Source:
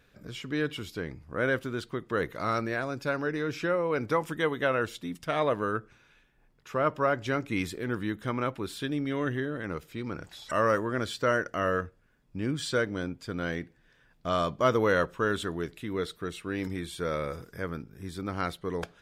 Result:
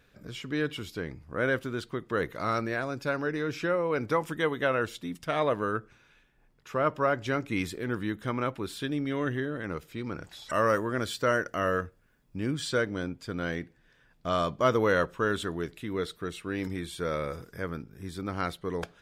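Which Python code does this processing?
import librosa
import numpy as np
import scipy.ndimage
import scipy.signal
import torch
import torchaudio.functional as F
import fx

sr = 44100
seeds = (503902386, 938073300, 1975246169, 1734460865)

y = fx.high_shelf(x, sr, hz=10000.0, db=9.0, at=(10.53, 12.55))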